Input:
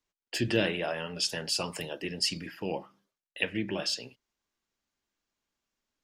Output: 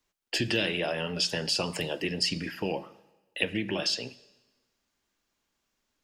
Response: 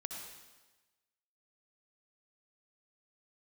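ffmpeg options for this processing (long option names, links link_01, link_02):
-filter_complex "[0:a]acrossover=split=680|2400|6300[link_01][link_02][link_03][link_04];[link_01]acompressor=threshold=-35dB:ratio=4[link_05];[link_02]acompressor=threshold=-45dB:ratio=4[link_06];[link_03]acompressor=threshold=-33dB:ratio=4[link_07];[link_04]acompressor=threshold=-51dB:ratio=4[link_08];[link_05][link_06][link_07][link_08]amix=inputs=4:normalize=0,asplit=2[link_09][link_10];[1:a]atrim=start_sample=2205[link_11];[link_10][link_11]afir=irnorm=-1:irlink=0,volume=-14.5dB[link_12];[link_09][link_12]amix=inputs=2:normalize=0,volume=5.5dB"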